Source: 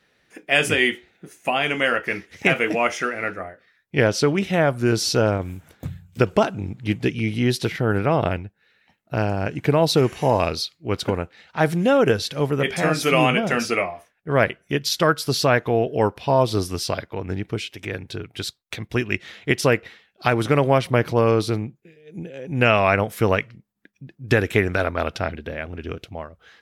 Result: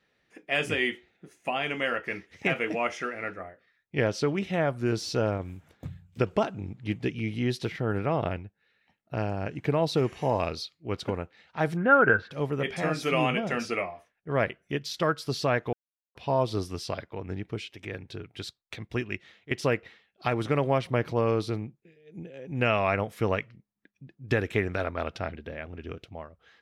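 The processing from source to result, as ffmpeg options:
ffmpeg -i in.wav -filter_complex "[0:a]asplit=3[link_01][link_02][link_03];[link_01]afade=type=out:start_time=11.76:duration=0.02[link_04];[link_02]lowpass=frequency=1500:width_type=q:width=12,afade=type=in:start_time=11.76:duration=0.02,afade=type=out:start_time=12.3:duration=0.02[link_05];[link_03]afade=type=in:start_time=12.3:duration=0.02[link_06];[link_04][link_05][link_06]amix=inputs=3:normalize=0,asplit=4[link_07][link_08][link_09][link_10];[link_07]atrim=end=15.73,asetpts=PTS-STARTPTS,afade=type=out:start_time=15.726:duration=0.004:curve=hsin[link_11];[link_08]atrim=start=15.73:end=16.15,asetpts=PTS-STARTPTS,volume=0[link_12];[link_09]atrim=start=16.15:end=19.51,asetpts=PTS-STARTPTS,afade=type=in:duration=0.004:curve=hsin,afade=type=out:start_time=2.84:duration=0.52:silence=0.188365[link_13];[link_10]atrim=start=19.51,asetpts=PTS-STARTPTS,afade=type=in:duration=0.004:curve=hsin:silence=0.188365[link_14];[link_11][link_12][link_13][link_14]concat=n=4:v=0:a=1,deesser=0.45,highshelf=frequency=8600:gain=-12,bandreject=frequency=1500:width=22,volume=-7.5dB" out.wav

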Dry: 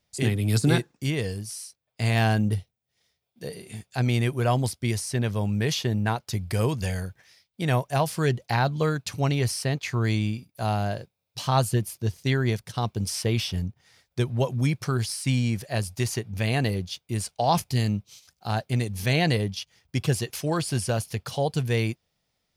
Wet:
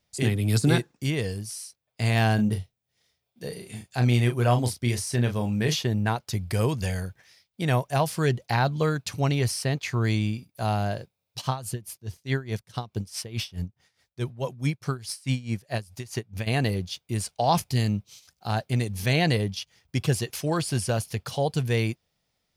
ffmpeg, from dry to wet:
ffmpeg -i in.wav -filter_complex "[0:a]asettb=1/sr,asplit=3[link_01][link_02][link_03];[link_01]atrim=end=2.354[link_04];[link_02]atrim=start=2.35:end=5.76,asetpts=PTS-STARTPTS,afade=type=in:duration=0.004:curve=qsin,afade=type=out:start_time=3.406:duration=0.004:curve=qsin,asplit=2[link_05][link_06];[link_06]adelay=33,volume=-7.5dB[link_07];[link_05][link_07]amix=inputs=2:normalize=0,atrim=end_sample=150381[link_08];[link_03]atrim=start=5.756[link_09];[link_04][link_08]acrossfade=duration=0.004:curve1=hsin:curve2=qsin[link_10];[link_10][link_09]acrossfade=duration=0.004:curve1=qsin:curve2=hsin,asplit=3[link_11][link_12][link_13];[link_11]afade=type=out:start_time=11.4:duration=0.02[link_14];[link_12]aeval=exprs='val(0)*pow(10,-19*(0.5-0.5*cos(2*PI*4.7*n/s))/20)':channel_layout=same,afade=type=in:start_time=11.4:duration=0.02,afade=type=out:start_time=16.46:duration=0.02[link_15];[link_13]afade=type=in:start_time=16.46:duration=0.02[link_16];[link_14][link_15][link_16]amix=inputs=3:normalize=0" out.wav

